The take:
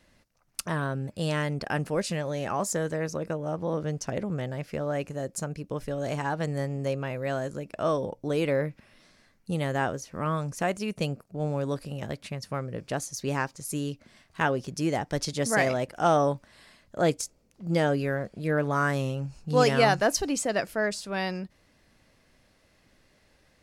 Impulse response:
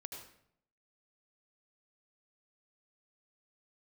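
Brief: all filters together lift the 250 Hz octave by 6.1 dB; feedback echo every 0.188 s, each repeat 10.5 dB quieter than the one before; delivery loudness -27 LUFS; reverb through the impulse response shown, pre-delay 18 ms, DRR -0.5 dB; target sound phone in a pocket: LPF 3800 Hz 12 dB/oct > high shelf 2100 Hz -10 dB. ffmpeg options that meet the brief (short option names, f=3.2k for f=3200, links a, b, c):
-filter_complex "[0:a]equalizer=f=250:t=o:g=8.5,aecho=1:1:188|376|564:0.299|0.0896|0.0269,asplit=2[a][b];[1:a]atrim=start_sample=2205,adelay=18[c];[b][c]afir=irnorm=-1:irlink=0,volume=4dB[d];[a][d]amix=inputs=2:normalize=0,lowpass=3.8k,highshelf=f=2.1k:g=-10,volume=-4dB"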